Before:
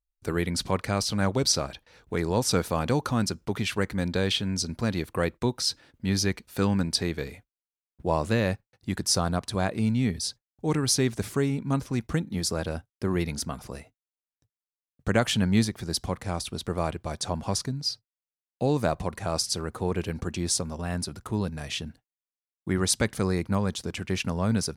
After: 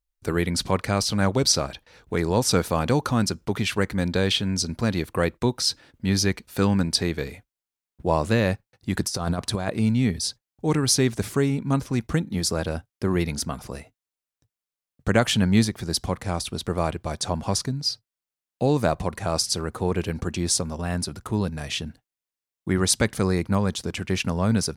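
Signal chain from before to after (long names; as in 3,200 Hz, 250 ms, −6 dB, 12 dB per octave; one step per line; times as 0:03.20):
0:08.94–0:09.70: compressor whose output falls as the input rises −28 dBFS, ratio −0.5
level +3.5 dB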